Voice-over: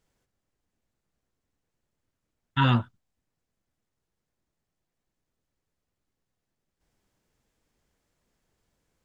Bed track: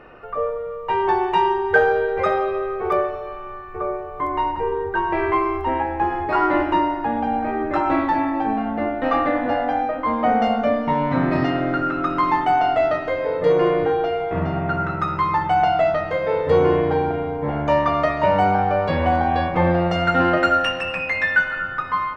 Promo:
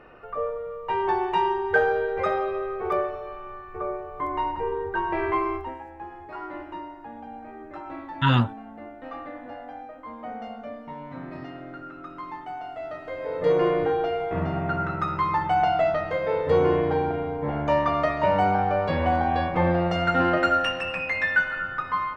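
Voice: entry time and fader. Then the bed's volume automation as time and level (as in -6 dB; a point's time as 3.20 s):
5.65 s, +2.0 dB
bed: 5.55 s -5 dB
5.78 s -18 dB
12.76 s -18 dB
13.49 s -4 dB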